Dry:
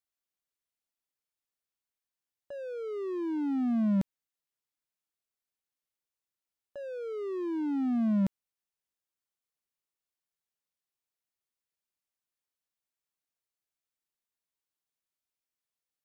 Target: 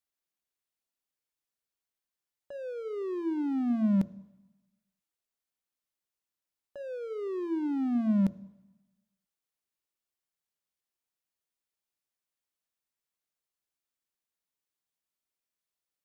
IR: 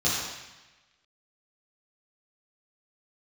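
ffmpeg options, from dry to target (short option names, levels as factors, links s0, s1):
-filter_complex "[0:a]bandreject=f=114.3:t=h:w=4,bandreject=f=228.6:t=h:w=4,bandreject=f=342.9:t=h:w=4,bandreject=f=457.2:t=h:w=4,bandreject=f=571.5:t=h:w=4,bandreject=f=685.8:t=h:w=4,asplit=2[s0][s1];[1:a]atrim=start_sample=2205,lowshelf=f=480:g=6[s2];[s1][s2]afir=irnorm=-1:irlink=0,volume=0.0224[s3];[s0][s3]amix=inputs=2:normalize=0"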